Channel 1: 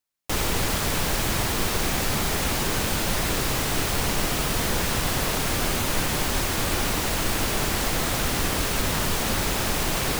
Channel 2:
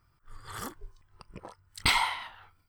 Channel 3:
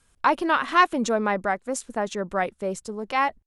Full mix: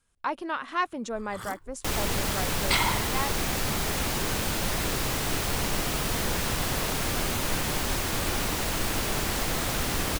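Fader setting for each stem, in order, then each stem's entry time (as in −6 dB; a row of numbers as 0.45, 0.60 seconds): −3.5, −0.5, −9.5 decibels; 1.55, 0.85, 0.00 seconds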